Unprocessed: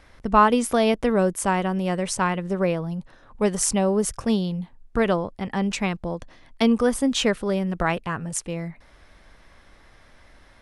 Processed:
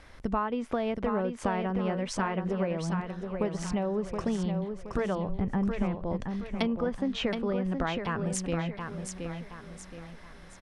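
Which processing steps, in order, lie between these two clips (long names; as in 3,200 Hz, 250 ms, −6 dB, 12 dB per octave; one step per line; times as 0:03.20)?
0:05.29–0:05.95: RIAA equalisation playback
treble cut that deepens with the level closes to 2,600 Hz, closed at −19.5 dBFS
downward compressor 6 to 1, threshold −27 dBFS, peak gain reduction 15.5 dB
on a send: repeating echo 722 ms, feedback 39%, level −6 dB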